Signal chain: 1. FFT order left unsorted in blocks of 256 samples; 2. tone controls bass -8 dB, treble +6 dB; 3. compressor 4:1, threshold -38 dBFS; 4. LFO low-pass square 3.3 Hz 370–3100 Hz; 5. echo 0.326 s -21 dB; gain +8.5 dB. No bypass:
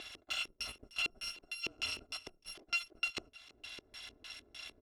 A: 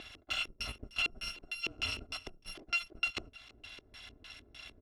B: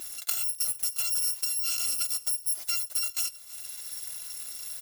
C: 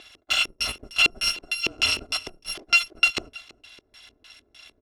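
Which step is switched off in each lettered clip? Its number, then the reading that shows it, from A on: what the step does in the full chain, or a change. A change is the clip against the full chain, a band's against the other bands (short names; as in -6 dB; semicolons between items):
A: 2, 125 Hz band +7.0 dB; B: 4, 8 kHz band +21.5 dB; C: 3, mean gain reduction 10.0 dB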